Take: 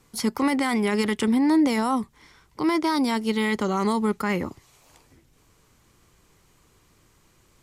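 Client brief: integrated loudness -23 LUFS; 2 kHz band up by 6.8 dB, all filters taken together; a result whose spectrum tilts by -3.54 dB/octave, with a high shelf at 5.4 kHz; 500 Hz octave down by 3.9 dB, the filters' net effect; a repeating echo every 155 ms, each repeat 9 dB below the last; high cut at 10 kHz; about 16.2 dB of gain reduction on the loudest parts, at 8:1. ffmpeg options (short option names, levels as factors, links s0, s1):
-af "lowpass=10000,equalizer=f=500:t=o:g=-5.5,equalizer=f=2000:t=o:g=7,highshelf=f=5400:g=5.5,acompressor=threshold=0.0158:ratio=8,aecho=1:1:155|310|465|620:0.355|0.124|0.0435|0.0152,volume=5.96"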